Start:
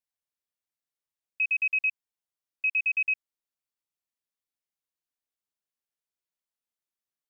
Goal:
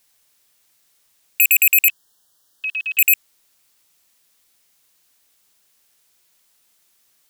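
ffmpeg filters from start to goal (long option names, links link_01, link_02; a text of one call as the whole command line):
ffmpeg -i in.wav -filter_complex "[0:a]asettb=1/sr,asplit=3[link_01][link_02][link_03];[link_01]atrim=end=1.884[link_04];[link_02]atrim=start=1.88:end=2.99,asetpts=PTS-STARTPTS,afade=type=in:duration=0.004:curve=qsin,afade=type=out:start_time=1.106:duration=0.004:curve=qsin,asuperstop=centerf=2300:order=8:qfactor=2.2[link_05];[link_03]atrim=start=2.986[link_06];[link_04][link_05]acrossfade=duration=0.004:curve1=hsin:curve2=qsin[link_07];[link_07][link_06]acrossfade=duration=0.004:curve1=qsin:curve2=hsin,highshelf=frequency=2300:gain=7,aeval=exprs='0.141*sin(PI/2*3.98*val(0)/0.141)':channel_layout=same,volume=8.5dB" out.wav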